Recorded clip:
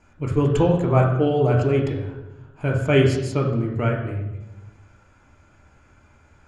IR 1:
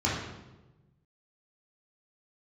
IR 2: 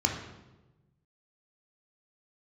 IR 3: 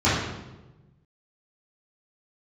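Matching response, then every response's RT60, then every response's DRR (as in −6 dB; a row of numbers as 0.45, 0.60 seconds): 2; 1.1, 1.1, 1.1 seconds; −8.0, 0.5, −13.5 decibels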